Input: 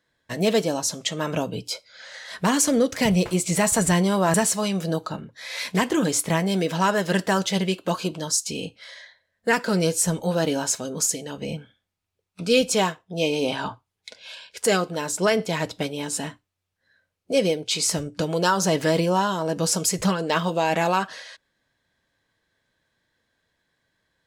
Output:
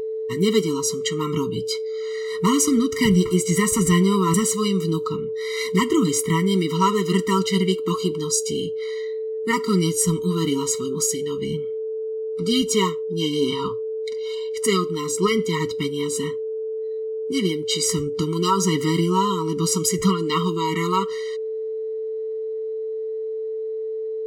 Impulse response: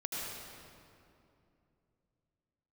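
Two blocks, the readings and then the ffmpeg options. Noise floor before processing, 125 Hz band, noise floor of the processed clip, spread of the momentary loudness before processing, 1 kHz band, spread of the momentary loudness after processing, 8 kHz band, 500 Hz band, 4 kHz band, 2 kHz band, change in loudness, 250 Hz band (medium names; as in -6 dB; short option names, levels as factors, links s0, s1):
-80 dBFS, +3.5 dB, -28 dBFS, 13 LU, +0.5 dB, 10 LU, +0.5 dB, +3.0 dB, +1.5 dB, -3.0 dB, +1.0 dB, +3.5 dB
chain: -af "aeval=exprs='val(0)+0.0501*sin(2*PI*440*n/s)':c=same,afftfilt=real='re*eq(mod(floor(b*sr/1024/460),2),0)':imag='im*eq(mod(floor(b*sr/1024/460),2),0)':win_size=1024:overlap=0.75,volume=1.5"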